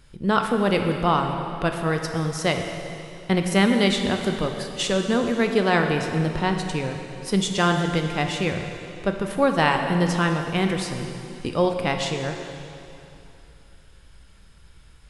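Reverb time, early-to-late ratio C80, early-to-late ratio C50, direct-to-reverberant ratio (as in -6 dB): 2.9 s, 6.0 dB, 5.0 dB, 4.0 dB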